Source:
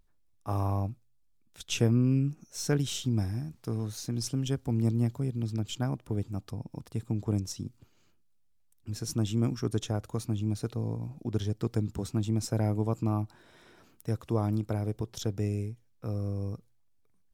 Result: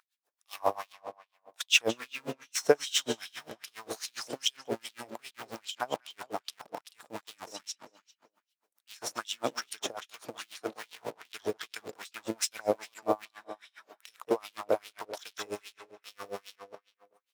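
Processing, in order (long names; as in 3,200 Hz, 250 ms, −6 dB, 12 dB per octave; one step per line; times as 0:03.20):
0:10.34–0:10.98: high-pass filter 120 Hz 24 dB per octave
in parallel at −9.5 dB: comparator with hysteresis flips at −37.5 dBFS
on the sum: tape delay 193 ms, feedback 45%, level −7 dB, low-pass 4,600 Hz
auto-filter high-pass sine 2.5 Hz 500–3,400 Hz
tremolo with a sine in dB 7.4 Hz, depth 28 dB
level +7.5 dB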